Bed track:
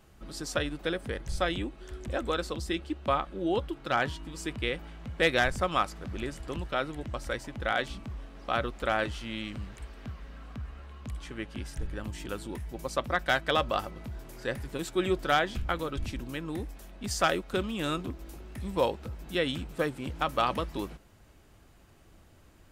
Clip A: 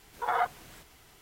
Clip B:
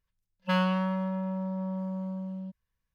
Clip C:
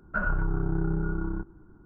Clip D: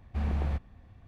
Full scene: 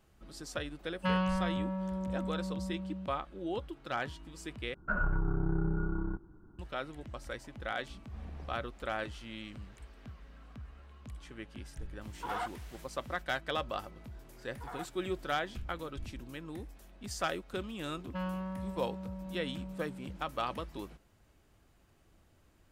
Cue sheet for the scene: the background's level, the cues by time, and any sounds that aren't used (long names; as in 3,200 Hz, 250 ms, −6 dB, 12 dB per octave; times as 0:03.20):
bed track −8 dB
0:00.56: mix in B −4 dB + low-pass filter 4,600 Hz
0:04.74: overwrite with C −4 dB
0:07.98: mix in D −15.5 dB
0:12.01: mix in A −14 dB + mid-hump overdrive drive 16 dB, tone 6,900 Hz, clips at −14 dBFS
0:14.39: mix in A −16.5 dB
0:17.66: mix in B −10 dB + high-shelf EQ 2,000 Hz −11 dB